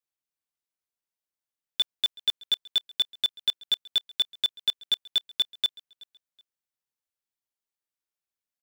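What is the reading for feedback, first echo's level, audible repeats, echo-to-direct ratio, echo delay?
28%, -23.5 dB, 2, -23.0 dB, 0.375 s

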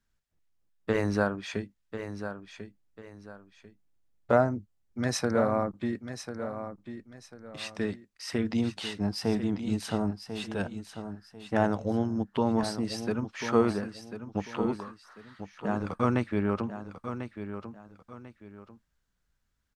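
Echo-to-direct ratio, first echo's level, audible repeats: -9.5 dB, -10.0 dB, 2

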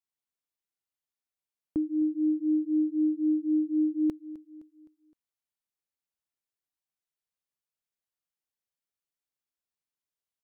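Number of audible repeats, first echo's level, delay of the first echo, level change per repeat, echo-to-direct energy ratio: 3, -18.5 dB, 0.258 s, -6.5 dB, -17.5 dB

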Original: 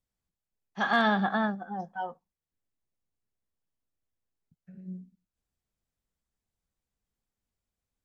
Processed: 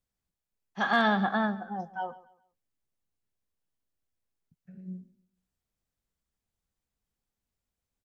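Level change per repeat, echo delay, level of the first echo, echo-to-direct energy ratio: -10.0 dB, 0.139 s, -18.5 dB, -18.0 dB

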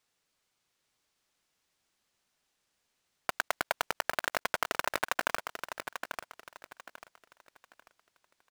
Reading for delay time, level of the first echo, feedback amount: 0.842 s, -8.0 dB, 30%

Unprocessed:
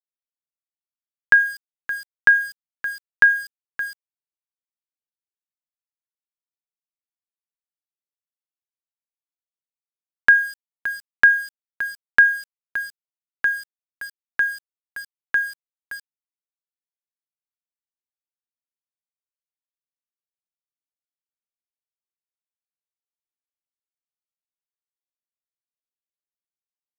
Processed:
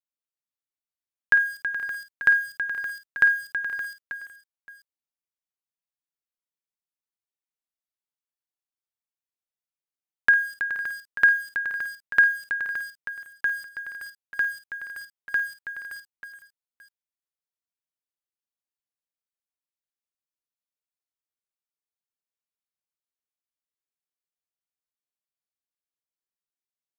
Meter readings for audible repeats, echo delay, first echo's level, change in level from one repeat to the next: 6, 52 ms, -11.5 dB, no steady repeat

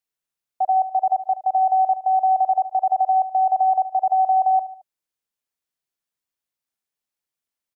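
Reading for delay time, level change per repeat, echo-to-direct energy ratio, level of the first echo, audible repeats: 74 ms, -6.0 dB, -14.0 dB, -15.0 dB, 3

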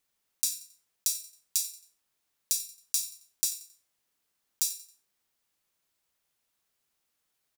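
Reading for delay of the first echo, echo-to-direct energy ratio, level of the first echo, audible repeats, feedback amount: 90 ms, -17.5 dB, -18.0 dB, 2, 37%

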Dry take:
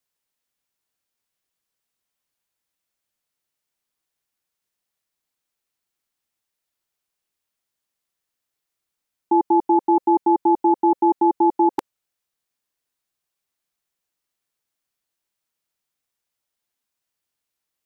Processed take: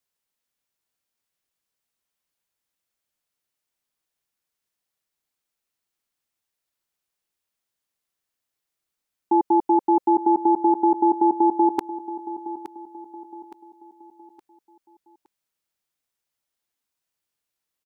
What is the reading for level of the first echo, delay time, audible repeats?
-14.5 dB, 0.867 s, 3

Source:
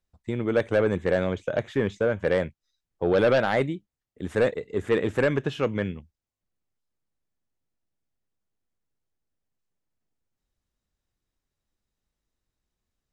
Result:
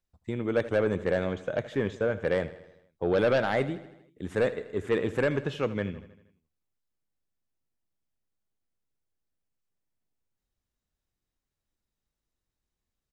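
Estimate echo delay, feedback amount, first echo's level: 79 ms, 59%, -16.0 dB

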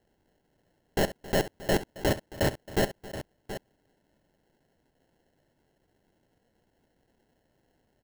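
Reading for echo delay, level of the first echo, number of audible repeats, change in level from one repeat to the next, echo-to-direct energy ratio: 67 ms, -15.5 dB, 3, no steady repeat, -10.0 dB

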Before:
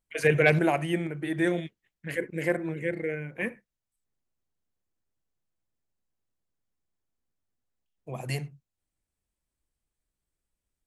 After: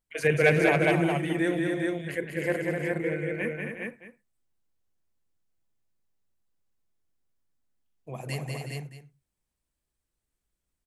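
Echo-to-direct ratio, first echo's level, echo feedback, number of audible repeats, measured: 0.5 dB, -4.5 dB, no steady repeat, 5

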